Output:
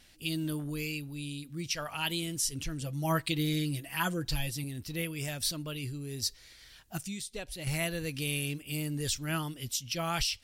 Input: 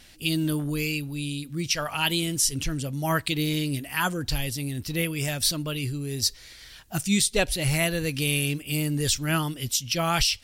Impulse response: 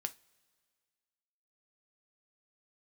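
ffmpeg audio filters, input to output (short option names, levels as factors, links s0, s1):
-filter_complex "[0:a]asettb=1/sr,asplit=3[s0][s1][s2];[s0]atrim=end=2.814[s3];[s1]atrim=start=2.81:end=4.64,asetpts=PTS-STARTPTS,afade=t=in:d=0.004:c=qsin,afade=t=out:st=1.826:d=0.004:c=qsin,aecho=1:1:6:0.79,atrim=end_sample=80703[s4];[s2]atrim=start=4.636[s5];[s3][s4]acrossfade=d=0.004:c1=hsin:c2=qsin[s6];[s6][s5]acrossfade=d=0.004:c1=qsin:c2=hsin,asettb=1/sr,asplit=3[s7][s8][s9];[s7]atrim=end=6.974[s10];[s8]atrim=start=6.97:end=7.67,asetpts=PTS-STARTPTS,afade=t=in:d=0.004:c=qsin,afade=t=out:st=0.696:d=0.004:c=qsin,acompressor=threshold=0.0355:ratio=5[s11];[s9]atrim=start=7.666[s12];[s10][s11]acrossfade=d=0.004:c1=hsin:c2=qsin[s13];[s13][s12]acrossfade=d=0.004:c1=qsin:c2=hsin,volume=0.398"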